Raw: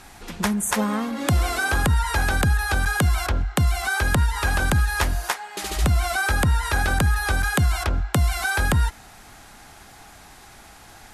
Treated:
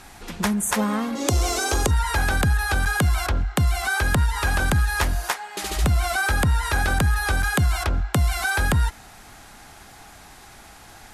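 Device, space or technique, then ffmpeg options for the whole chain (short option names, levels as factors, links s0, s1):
parallel distortion: -filter_complex "[0:a]asettb=1/sr,asplit=3[s0][s1][s2];[s0]atrim=end=1.154[s3];[s1]atrim=start=1.15:end=1.91,asetpts=PTS-STARTPTS,afade=t=in:d=0.004:c=qsin,afade=t=out:st=0.756:d=0.004:c=qsin,equalizer=f=160:t=o:w=0.67:g=-11,equalizer=f=400:t=o:w=0.67:g=8,equalizer=f=1600:t=o:w=0.67:g=-7,equalizer=f=6300:t=o:w=0.67:g=11[s4];[s2]atrim=start=1.906[s5];[s3][s4]acrossfade=d=0.004:c1=hsin:c2=qsin[s6];[s6][s5]acrossfade=d=0.004:c1=qsin:c2=hsin,asplit=2[s7][s8];[s8]asoftclip=type=hard:threshold=0.1,volume=0.355[s9];[s7][s9]amix=inputs=2:normalize=0,volume=0.794"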